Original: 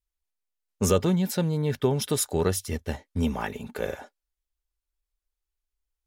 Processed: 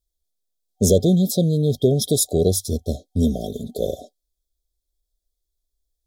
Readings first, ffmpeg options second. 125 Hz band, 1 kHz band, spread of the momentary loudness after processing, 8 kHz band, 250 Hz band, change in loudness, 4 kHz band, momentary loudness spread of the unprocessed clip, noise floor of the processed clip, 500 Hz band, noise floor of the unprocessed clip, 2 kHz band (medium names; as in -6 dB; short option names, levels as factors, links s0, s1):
+7.0 dB, -5.5 dB, 11 LU, +7.0 dB, +7.0 dB, +6.5 dB, +6.0 dB, 10 LU, -80 dBFS, +6.5 dB, under -85 dBFS, under -40 dB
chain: -af "acontrast=86,afftfilt=real='re*(1-between(b*sr/4096,750,3200))':imag='im*(1-between(b*sr/4096,750,3200))':win_size=4096:overlap=0.75"